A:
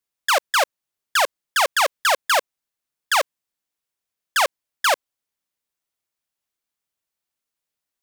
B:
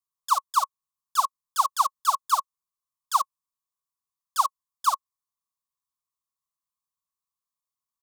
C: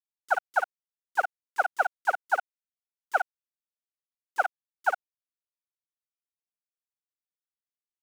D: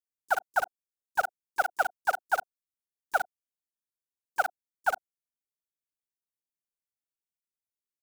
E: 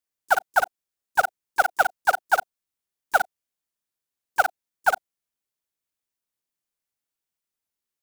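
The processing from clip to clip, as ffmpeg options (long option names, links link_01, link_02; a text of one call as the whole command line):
ffmpeg -i in.wav -af "firequalizer=gain_entry='entry(170,0);entry(430,-30);entry(1100,14);entry(1700,-29);entry(3600,-4);entry(6600,1)':delay=0.05:min_phase=1,volume=-7.5dB" out.wav
ffmpeg -i in.wav -af "aeval=exprs='val(0)*gte(abs(val(0)),0.0355)':channel_layout=same,aeval=exprs='val(0)*sin(2*PI*350*n/s)':channel_layout=same,afwtdn=0.02" out.wav
ffmpeg -i in.wav -filter_complex "[0:a]acrossover=split=510|5100[link_01][link_02][link_03];[link_01]asplit=2[link_04][link_05];[link_05]adelay=35,volume=-10.5dB[link_06];[link_04][link_06]amix=inputs=2:normalize=0[link_07];[link_02]acrusher=bits=5:mix=0:aa=0.000001[link_08];[link_03]alimiter=level_in=21.5dB:limit=-24dB:level=0:latency=1,volume=-21.5dB[link_09];[link_07][link_08][link_09]amix=inputs=3:normalize=0,volume=-1.5dB" out.wav
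ffmpeg -i in.wav -af "acrusher=bits=4:mode=log:mix=0:aa=0.000001,volume=6.5dB" out.wav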